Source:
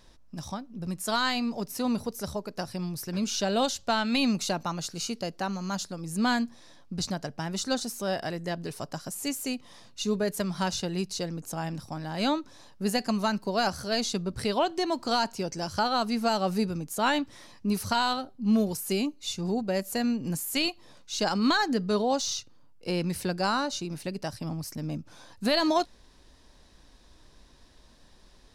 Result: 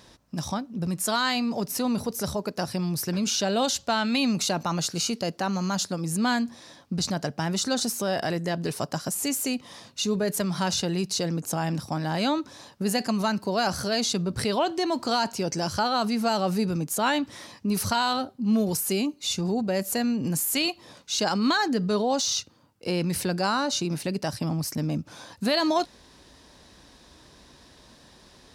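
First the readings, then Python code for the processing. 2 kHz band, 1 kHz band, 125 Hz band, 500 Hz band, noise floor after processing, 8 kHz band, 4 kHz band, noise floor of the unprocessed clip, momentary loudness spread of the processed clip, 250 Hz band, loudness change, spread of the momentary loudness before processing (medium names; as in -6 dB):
+2.0 dB, +2.0 dB, +5.0 dB, +2.0 dB, -54 dBFS, +6.5 dB, +3.0 dB, -56 dBFS, 6 LU, +2.5 dB, +3.0 dB, 10 LU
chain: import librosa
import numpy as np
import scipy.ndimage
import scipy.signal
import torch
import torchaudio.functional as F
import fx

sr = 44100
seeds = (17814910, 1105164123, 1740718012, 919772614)

p1 = scipy.signal.sosfilt(scipy.signal.butter(2, 80.0, 'highpass', fs=sr, output='sos'), x)
p2 = fx.over_compress(p1, sr, threshold_db=-34.0, ratio=-1.0)
y = p1 + (p2 * librosa.db_to_amplitude(-2.0))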